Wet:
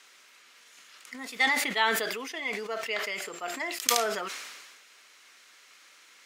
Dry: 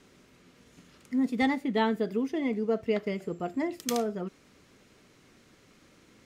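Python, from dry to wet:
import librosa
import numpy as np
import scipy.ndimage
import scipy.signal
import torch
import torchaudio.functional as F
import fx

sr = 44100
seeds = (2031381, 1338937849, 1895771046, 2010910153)

y = scipy.signal.sosfilt(scipy.signal.butter(2, 1300.0, 'highpass', fs=sr, output='sos'), x)
y = fx.sustainer(y, sr, db_per_s=37.0)
y = F.gain(torch.from_numpy(y), 8.5).numpy()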